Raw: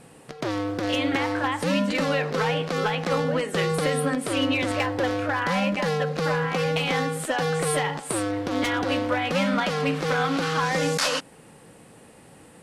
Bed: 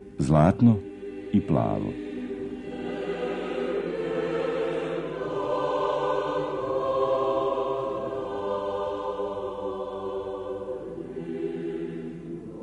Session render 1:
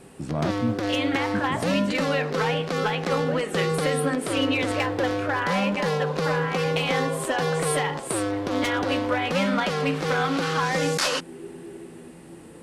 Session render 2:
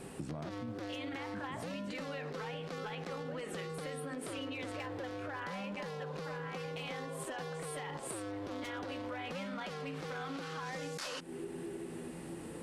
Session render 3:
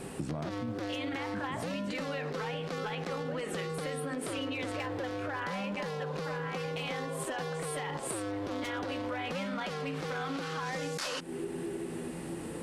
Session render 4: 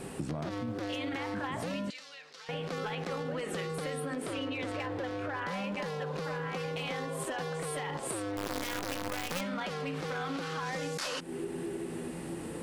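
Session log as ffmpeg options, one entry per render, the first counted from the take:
-filter_complex "[1:a]volume=-8.5dB[a];[0:a][a]amix=inputs=2:normalize=0"
-af "alimiter=limit=-21.5dB:level=0:latency=1,acompressor=threshold=-39dB:ratio=6"
-af "volume=5.5dB"
-filter_complex "[0:a]asettb=1/sr,asplit=3[a][b][c];[a]atrim=end=1.904[d];[b]atrim=start=1.9:end=2.49,asetpts=PTS-STARTPTS,afade=t=in:d=0.004:c=qsin,afade=t=out:st=0.586:d=0.004:c=qsin,bandpass=f=5.2k:t=q:w=1.2[e];[c]atrim=start=2.486[f];[d][e]acrossfade=d=0.004:c1=hsin:c2=qsin[g];[g][f]acrossfade=d=0.004:c1=qsin:c2=hsin,asettb=1/sr,asplit=3[h][i][j];[h]atrim=end=4.224[k];[i]atrim=start=4.22:end=5.48,asetpts=PTS-STARTPTS,afade=t=in:d=0.004:c=qsin,afade=t=out:st=1.256:d=0.004:c=qsin,highshelf=f=6.6k:g=-6.5[l];[j]atrim=start=5.476[m];[k][l]acrossfade=d=0.004:c1=hsin:c2=qsin[n];[n][m]acrossfade=d=0.004:c1=qsin:c2=hsin,asettb=1/sr,asplit=3[o][p][q];[o]atrim=end=8.374[r];[p]atrim=start=8.37:end=9.41,asetpts=PTS-STARTPTS,afade=t=in:d=0.004:c=qsin,afade=t=out:st=1.036:d=0.004:c=qsin,acrusher=bits=6:dc=4:mix=0:aa=0.000001[s];[q]atrim=start=9.406[t];[r][s]acrossfade=d=0.004:c1=hsin:c2=qsin[u];[u][t]acrossfade=d=0.004:c1=qsin:c2=hsin"

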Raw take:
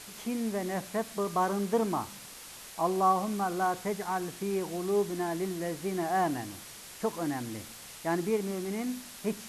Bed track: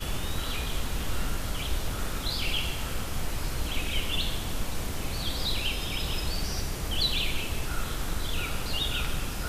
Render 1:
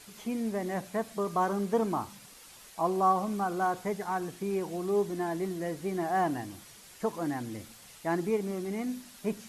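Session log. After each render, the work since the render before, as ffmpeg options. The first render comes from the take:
-af "afftdn=nr=7:nf=-47"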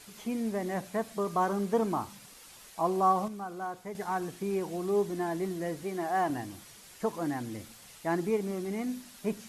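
-filter_complex "[0:a]asettb=1/sr,asplit=3[a][b][c];[a]atrim=end=5.834[d];[b]atrim=start=5.83:end=6.3,asetpts=PTS-STARTPTS,afade=t=in:d=0.004:c=qsin,afade=t=out:st=0.466:d=0.004:c=qsin,highpass=f=280:p=1[e];[c]atrim=start=6.296[f];[d][e]acrossfade=d=0.004:c1=hsin:c2=qsin[g];[g][f]acrossfade=d=0.004:c1=qsin:c2=hsin,asplit=3[h][i][j];[h]atrim=end=3.282[k];[i]atrim=start=3.278:end=3.952,asetpts=PTS-STARTPTS,volume=-8dB[l];[j]atrim=start=3.948[m];[k][l]acrossfade=d=0.004:c1=hsin:c2=hsin[n];[n][m]acrossfade=d=0.004:c1=hsin:c2=hsin"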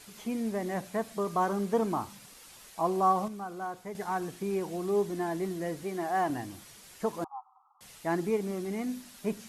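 -filter_complex "[0:a]asettb=1/sr,asplit=3[a][b][c];[a]atrim=end=7.244[d];[b]atrim=start=7.24:end=7.81,asetpts=PTS-STARTPTS,afade=t=in:d=0.004:c=qsin,afade=t=out:st=0.566:d=0.004:c=qsin,asuperpass=centerf=1000:order=20:qfactor=1.8[e];[c]atrim=start=7.806[f];[d][e]acrossfade=d=0.004:c1=hsin:c2=qsin[g];[g][f]acrossfade=d=0.004:c1=qsin:c2=hsin"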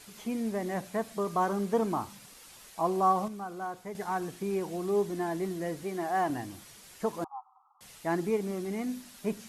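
-af anull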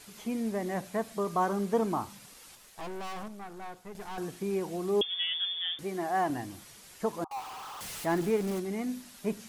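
-filter_complex "[0:a]asettb=1/sr,asplit=3[a][b][c];[a]atrim=end=2.554[d];[b]atrim=start=2.55:end=4.18,asetpts=PTS-STARTPTS,afade=t=in:d=0.004:c=qsin,afade=t=out:st=1.626:d=0.004:c=qsin,aeval=exprs='(tanh(79.4*val(0)+0.7)-tanh(0.7))/79.4':c=same[e];[c]atrim=start=4.176[f];[d][e]acrossfade=d=0.004:c1=hsin:c2=qsin[g];[g][f]acrossfade=d=0.004:c1=qsin:c2=hsin,asettb=1/sr,asplit=3[h][i][j];[h]atrim=end=5.014[k];[i]atrim=start=5.01:end=5.79,asetpts=PTS-STARTPTS,afade=t=in:d=0.004:c=qsin,afade=t=out:st=0.776:d=0.004:c=qsin,lowpass=f=3.1k:t=q:w=0.5098,lowpass=f=3.1k:t=q:w=0.6013,lowpass=f=3.1k:t=q:w=0.9,lowpass=f=3.1k:t=q:w=2.563,afreqshift=-3700[l];[j]atrim=start=5.786[m];[k][l]acrossfade=d=0.004:c1=hsin:c2=qsin[n];[n][m]acrossfade=d=0.004:c1=qsin:c2=hsin,asettb=1/sr,asplit=3[o][p][q];[o]atrim=end=7.314[r];[p]atrim=start=7.31:end=8.6,asetpts=PTS-STARTPTS,afade=t=in:d=0.004:c=qsin,afade=t=out:st=1.286:d=0.004:c=qsin,aeval=exprs='val(0)+0.5*0.0141*sgn(val(0))':c=same[s];[q]atrim=start=8.596[t];[r][s]acrossfade=d=0.004:c1=hsin:c2=qsin[u];[u][t]acrossfade=d=0.004:c1=qsin:c2=hsin"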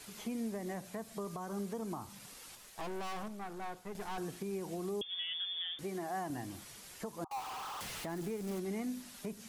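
-filter_complex "[0:a]acrossover=split=200|4700[a][b][c];[a]acompressor=threshold=-41dB:ratio=4[d];[b]acompressor=threshold=-36dB:ratio=4[e];[c]acompressor=threshold=-48dB:ratio=4[f];[d][e][f]amix=inputs=3:normalize=0,alimiter=level_in=6.5dB:limit=-24dB:level=0:latency=1:release=318,volume=-6.5dB"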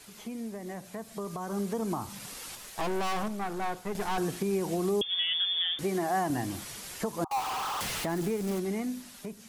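-af "dynaudnorm=f=600:g=5:m=10dB"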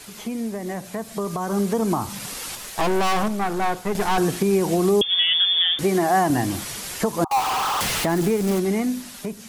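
-af "volume=10dB"

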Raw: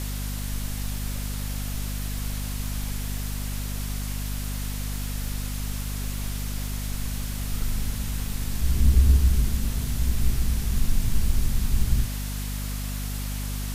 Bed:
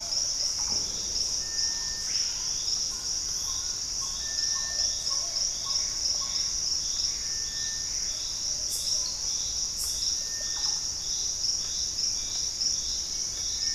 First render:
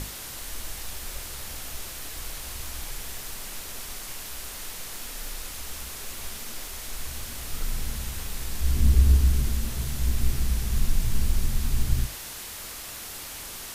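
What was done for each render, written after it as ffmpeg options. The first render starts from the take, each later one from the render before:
-af "bandreject=f=50:t=h:w=6,bandreject=f=100:t=h:w=6,bandreject=f=150:t=h:w=6,bandreject=f=200:t=h:w=6,bandreject=f=250:t=h:w=6"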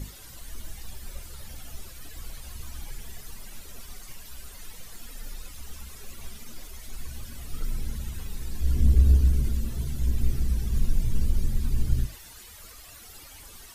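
-af "afftdn=nr=14:nf=-39"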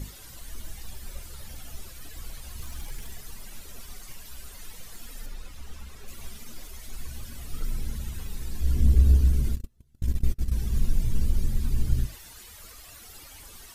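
-filter_complex "[0:a]asettb=1/sr,asplit=3[a][b][c];[a]atrim=end=2.584[d];[b]atrim=start=2.58:end=3.14,asetpts=PTS-STARTPTS,afade=t=in:d=0.004:c=qsin,afade=t=out:st=0.556:d=0.004:c=qsin,aeval=exprs='val(0)+0.5*0.00447*sgn(val(0))':c=same[e];[c]atrim=start=3.136[f];[d][e]acrossfade=d=0.004:c1=hsin:c2=qsin[g];[g][f]acrossfade=d=0.004:c1=qsin:c2=hsin,asettb=1/sr,asplit=3[h][i][j];[h]atrim=end=5.264[k];[i]atrim=start=5.26:end=6.08,asetpts=PTS-STARTPTS,afade=t=in:d=0.004:c=qsin,afade=t=out:st=0.816:d=0.004:c=qsin,aemphasis=mode=reproduction:type=cd[l];[j]atrim=start=6.076[m];[k][l]acrossfade=d=0.004:c1=hsin:c2=qsin[n];[n][m]acrossfade=d=0.004:c1=qsin:c2=hsin,asplit=3[o][p][q];[o]afade=t=out:st=9.54:d=0.02[r];[p]agate=range=-35dB:threshold=-23dB:ratio=16:release=100:detection=peak,afade=t=in:st=9.54:d=0.02,afade=t=out:st=10.51:d=0.02[s];[q]afade=t=in:st=10.51:d=0.02[t];[r][s][t]amix=inputs=3:normalize=0"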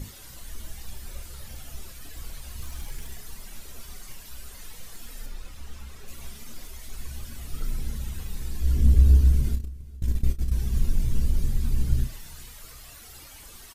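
-filter_complex "[0:a]asplit=2[a][b];[b]adelay=31,volume=-9.5dB[c];[a][c]amix=inputs=2:normalize=0,aecho=1:1:414|828|1242:0.0708|0.034|0.0163"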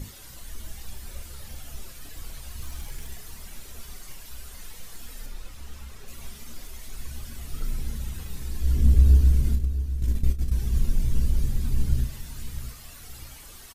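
-af "aecho=1:1:649|1298|1947:0.237|0.0711|0.0213"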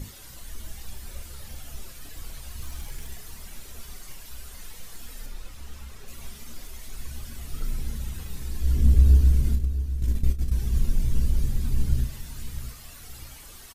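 -af anull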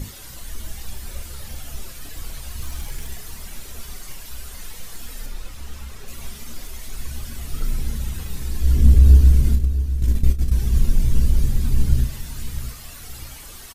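-af "volume=6dB,alimiter=limit=-1dB:level=0:latency=1"

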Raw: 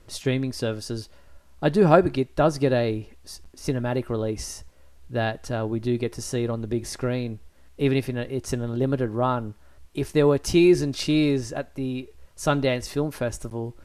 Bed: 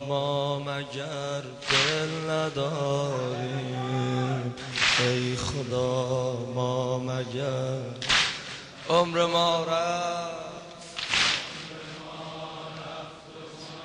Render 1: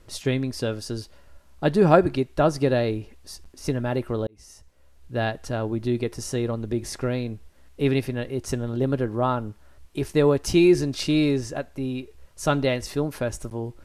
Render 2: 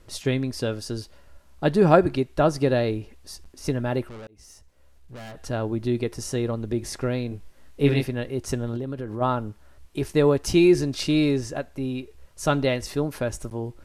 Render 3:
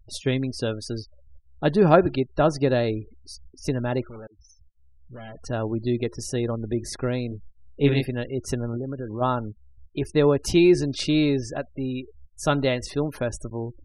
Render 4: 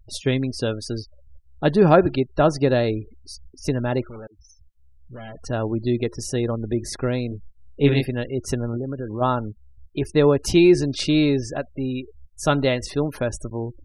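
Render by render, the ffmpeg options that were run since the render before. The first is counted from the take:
-filter_complex "[0:a]asplit=2[a][b];[a]atrim=end=4.27,asetpts=PTS-STARTPTS,afade=t=out:st=4.266:d=0.004:c=hsin[c];[b]atrim=start=4.27,asetpts=PTS-STARTPTS,afade=t=in:d=0.96[d];[c][d]concat=n=2:v=0:a=1"
-filter_complex "[0:a]asettb=1/sr,asplit=3[a][b][c];[a]atrim=end=4.064[d];[b]atrim=start=4.06:end=5.38,asetpts=PTS-STARTPTS,afade=t=in:d=0.004:c=qsin,afade=t=out:st=1.316:d=0.004:c=qsin,aeval=exprs='(tanh(79.4*val(0)+0.3)-tanh(0.3))/79.4':c=same[e];[c]atrim=start=5.376[f];[d][e]acrossfade=d=0.004:c1=hsin:c2=qsin[g];[g][f]acrossfade=d=0.004:c1=qsin:c2=hsin,asettb=1/sr,asplit=3[h][i][j];[h]atrim=end=7.294[k];[i]atrim=start=7.29:end=8.04,asetpts=PTS-STARTPTS,afade=t=in:d=0.004:c=qsin,afade=t=out:st=0.746:d=0.004:c=qsin,asplit=2[l][m];[m]adelay=21,volume=-3dB[n];[l][n]amix=inputs=2:normalize=0,atrim=end_sample=33075[o];[j]atrim=start=8.036[p];[k][o]acrossfade=d=0.004:c1=hsin:c2=qsin[q];[q][p]acrossfade=d=0.004:c1=qsin:c2=hsin,asplit=3[r][s][t];[r]afade=t=out:st=8.76:d=0.02[u];[s]acompressor=threshold=-27dB:ratio=6:attack=3.2:release=140:knee=1:detection=peak,afade=t=in:st=8.76:d=0.02,afade=t=out:st=9.2:d=0.02[v];[t]afade=t=in:st=9.2:d=0.02[w];[u][v][w]amix=inputs=3:normalize=0"
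-af "afftfilt=real='re*gte(hypot(re,im),0.01)':imag='im*gte(hypot(re,im),0.01)':win_size=1024:overlap=0.75,equalizer=f=3.5k:w=6.7:g=3"
-af "volume=2.5dB,alimiter=limit=-3dB:level=0:latency=1"

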